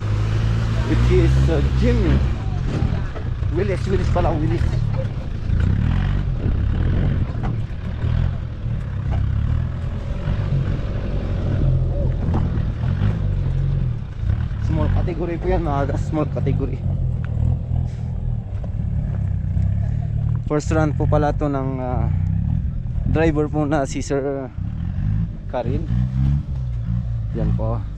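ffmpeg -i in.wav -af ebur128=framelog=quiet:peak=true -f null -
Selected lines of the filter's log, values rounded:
Integrated loudness:
  I:         -21.7 LUFS
  Threshold: -31.7 LUFS
Loudness range:
  LRA:         3.5 LU
  Threshold: -41.9 LUFS
  LRA low:   -23.4 LUFS
  LRA high:  -20.0 LUFS
True peak:
  Peak:       -4.0 dBFS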